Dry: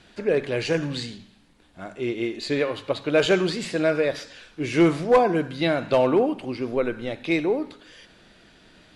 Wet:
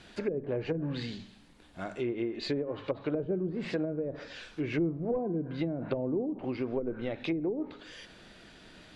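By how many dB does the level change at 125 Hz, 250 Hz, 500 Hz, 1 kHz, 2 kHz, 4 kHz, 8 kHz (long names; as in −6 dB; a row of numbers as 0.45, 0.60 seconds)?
−5.5 dB, −7.5 dB, −11.0 dB, −17.0 dB, −14.5 dB, −12.5 dB, below −15 dB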